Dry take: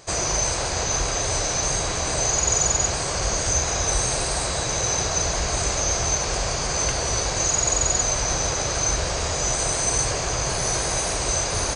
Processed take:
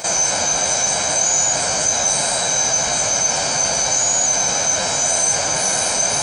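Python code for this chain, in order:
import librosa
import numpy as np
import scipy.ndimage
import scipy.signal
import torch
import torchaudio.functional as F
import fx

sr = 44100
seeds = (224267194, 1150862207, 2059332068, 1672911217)

y = fx.octave_divider(x, sr, octaves=1, level_db=-1.0)
y = fx.high_shelf(y, sr, hz=8400.0, db=7.0)
y = fx.quant_dither(y, sr, seeds[0], bits=12, dither='none')
y = fx.room_early_taps(y, sr, ms=(21, 73), db=(-3.5, -9.5))
y = fx.stretch_vocoder(y, sr, factor=0.53)
y = scipy.signal.sosfilt(scipy.signal.butter(2, 230.0, 'highpass', fs=sr, output='sos'), y)
y = y + 0.56 * np.pad(y, (int(1.3 * sr / 1000.0), 0))[:len(y)]
y = fx.env_flatten(y, sr, amount_pct=50)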